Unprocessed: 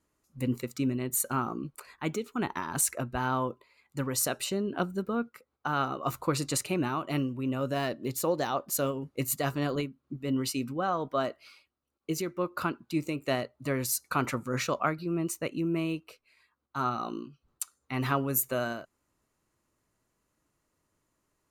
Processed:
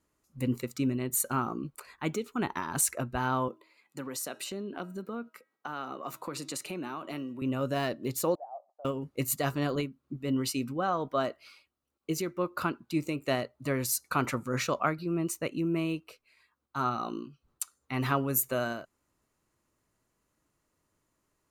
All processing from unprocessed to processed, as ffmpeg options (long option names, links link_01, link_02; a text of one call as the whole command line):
ffmpeg -i in.wav -filter_complex "[0:a]asettb=1/sr,asplit=3[link_01][link_02][link_03];[link_01]atrim=end=3.484[link_04];[link_02]atrim=start=3.48:end=7.42,asetpts=PTS-STARTPTS,afade=type=in:duration=0.004:curve=qsin,afade=type=out:start_time=3.936:duration=0.004:curve=qsin,highpass=frequency=170:width=0.5412,highpass=frequency=170:width=1.3066,acompressor=threshold=-36dB:ratio=2.5:attack=3.2:release=140:knee=1:detection=peak,bandreject=frequency=319.7:width_type=h:width=4,bandreject=frequency=639.4:width_type=h:width=4,bandreject=frequency=959.1:width_type=h:width=4,bandreject=frequency=1278.8:width_type=h:width=4,bandreject=frequency=1598.5:width_type=h:width=4,bandreject=frequency=1918.2:width_type=h:width=4,bandreject=frequency=2237.9:width_type=h:width=4,bandreject=frequency=2557.6:width_type=h:width=4,bandreject=frequency=2877.3:width_type=h:width=4,bandreject=frequency=3197:width_type=h:width=4,bandreject=frequency=3516.7:width_type=h:width=4,bandreject=frequency=3836.4:width_type=h:width=4,bandreject=frequency=4156.1:width_type=h:width=4[link_05];[link_03]atrim=start=7.416[link_06];[link_04][link_05]acrossfade=duration=0.004:curve1=hsin:curve2=qsin[link_07];[link_07][link_06]acrossfade=duration=0.004:curve1=qsin:curve2=hsin,asettb=1/sr,asplit=3[link_08][link_09][link_10];[link_08]atrim=end=8.354[link_11];[link_09]atrim=start=8.35:end=8.85,asetpts=PTS-STARTPTS,afade=type=in:duration=0.004:curve=qsin,afade=type=out:start_time=0.496:duration=0.004:curve=qsin,acompressor=threshold=-36dB:ratio=2.5:attack=3.2:release=140:knee=1:detection=peak,asuperpass=centerf=710:order=4:qfactor=4.2[link_12];[link_10]atrim=start=8.846[link_13];[link_11][link_12]acrossfade=duration=0.004:curve1=hsin:curve2=qsin[link_14];[link_14][link_13]acrossfade=duration=0.004:curve1=qsin:curve2=hsin" out.wav